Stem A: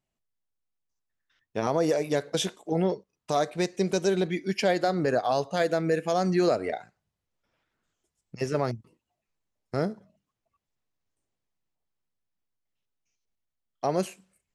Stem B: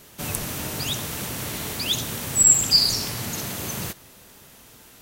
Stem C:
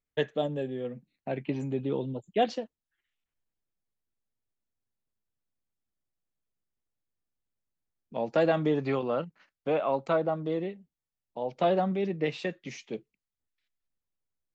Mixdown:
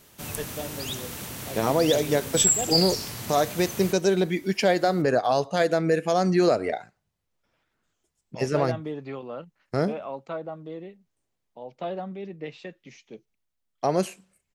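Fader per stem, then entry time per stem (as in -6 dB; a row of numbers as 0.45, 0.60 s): +3.0, -6.0, -7.0 dB; 0.00, 0.00, 0.20 s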